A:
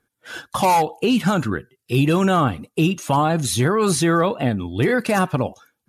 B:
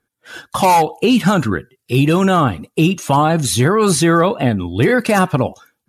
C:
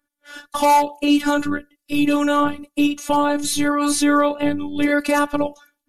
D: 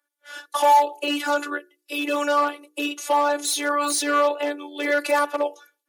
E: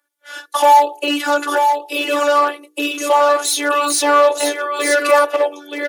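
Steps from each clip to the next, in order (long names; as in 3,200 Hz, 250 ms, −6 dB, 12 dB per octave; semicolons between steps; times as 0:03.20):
automatic gain control gain up to 9.5 dB; level −1.5 dB
phases set to zero 291 Hz; level −1.5 dB
hard clipping −9 dBFS, distortion −18 dB; Butterworth high-pass 340 Hz 48 dB per octave; mains-hum notches 60/120/180/240/300/360/420/480 Hz
single-tap delay 929 ms −5.5 dB; level +6 dB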